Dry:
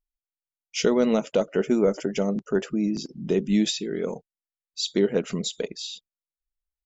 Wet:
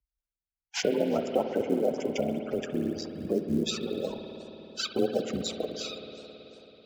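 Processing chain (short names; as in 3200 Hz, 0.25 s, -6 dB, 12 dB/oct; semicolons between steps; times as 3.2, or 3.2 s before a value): cycle switcher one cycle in 3, muted; reverb removal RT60 0.51 s; spectral gate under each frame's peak -15 dB strong; dynamic EQ 1300 Hz, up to +6 dB, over -41 dBFS, Q 0.8; in parallel at +1.5 dB: compressor 10:1, threshold -33 dBFS, peak gain reduction 17 dB; on the sum: short-mantissa float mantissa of 4-bit; frequency shift +21 Hz; on a send at -5.5 dB: reverb RT60 3.9 s, pre-delay 54 ms; on the sum: warbling echo 0.353 s, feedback 40%, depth 215 cents, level -21.5 dB; gain -6 dB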